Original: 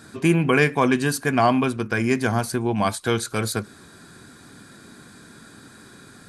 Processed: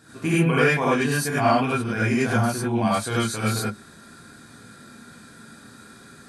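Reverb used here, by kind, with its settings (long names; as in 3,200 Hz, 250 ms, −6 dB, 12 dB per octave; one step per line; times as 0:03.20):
reverb whose tail is shaped and stops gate 120 ms rising, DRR −8 dB
level −8.5 dB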